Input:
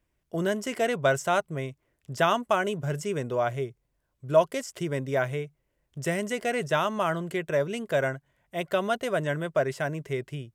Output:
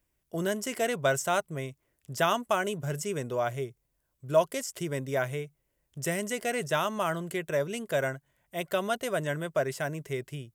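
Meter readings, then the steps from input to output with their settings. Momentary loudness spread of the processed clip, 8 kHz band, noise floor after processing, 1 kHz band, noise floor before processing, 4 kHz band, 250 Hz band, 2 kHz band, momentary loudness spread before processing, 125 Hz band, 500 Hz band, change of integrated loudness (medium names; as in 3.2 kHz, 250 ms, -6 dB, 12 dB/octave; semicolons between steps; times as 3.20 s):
11 LU, +3.5 dB, -78 dBFS, -3.0 dB, -77 dBFS, -0.5 dB, -3.0 dB, -2.5 dB, 11 LU, -3.0 dB, -3.0 dB, -2.5 dB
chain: treble shelf 6.7 kHz +12 dB; trim -3 dB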